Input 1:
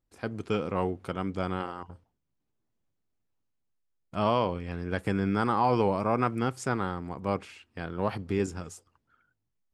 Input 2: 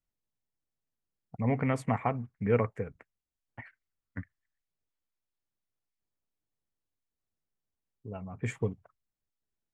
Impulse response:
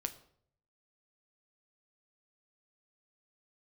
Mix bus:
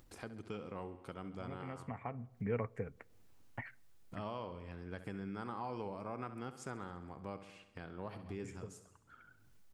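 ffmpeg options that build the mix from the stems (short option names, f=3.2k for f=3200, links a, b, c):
-filter_complex "[0:a]acompressor=mode=upward:threshold=-34dB:ratio=2.5,volume=-9.5dB,asplit=3[a][b][c];[b]volume=-13dB[d];[1:a]dynaudnorm=f=240:g=17:m=11.5dB,volume=-4.5dB,asplit=2[e][f];[f]volume=-17dB[g];[c]apad=whole_len=429505[h];[e][h]sidechaincompress=threshold=-53dB:ratio=8:attack=5:release=669[i];[2:a]atrim=start_sample=2205[j];[g][j]afir=irnorm=-1:irlink=0[k];[d]aecho=0:1:67|134|201|268|335|402|469|536:1|0.55|0.303|0.166|0.0915|0.0503|0.0277|0.0152[l];[a][i][k][l]amix=inputs=4:normalize=0,acompressor=threshold=-45dB:ratio=2"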